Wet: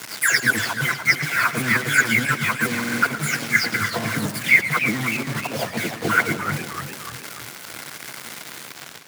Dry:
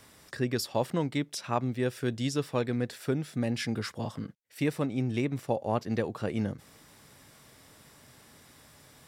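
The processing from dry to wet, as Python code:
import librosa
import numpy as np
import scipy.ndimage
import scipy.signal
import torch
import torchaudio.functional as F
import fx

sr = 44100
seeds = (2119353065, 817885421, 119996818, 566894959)

p1 = fx.spec_delay(x, sr, highs='early', ms=373)
p2 = fx.ripple_eq(p1, sr, per_octave=1.8, db=10)
p3 = 10.0 ** (-31.0 / 20.0) * np.tanh(p2 / 10.0 ** (-31.0 / 20.0))
p4 = p2 + F.gain(torch.from_numpy(p3), -6.0).numpy()
p5 = fx.over_compress(p4, sr, threshold_db=-33.0, ratio=-0.5)
p6 = fx.band_shelf(p5, sr, hz=1700.0, db=11.5, octaves=1.1)
p7 = fx.quant_dither(p6, sr, seeds[0], bits=6, dither='none')
p8 = scipy.signal.sosfilt(scipy.signal.butter(4, 110.0, 'highpass', fs=sr, output='sos'), p7)
p9 = fx.echo_feedback(p8, sr, ms=113, feedback_pct=57, wet_db=-13.5)
p10 = fx.buffer_glitch(p9, sr, at_s=(2.7,), block=2048, repeats=6)
p11 = fx.echo_warbled(p10, sr, ms=299, feedback_pct=49, rate_hz=2.8, cents=201, wet_db=-9.5)
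y = F.gain(torch.from_numpy(p11), 7.0).numpy()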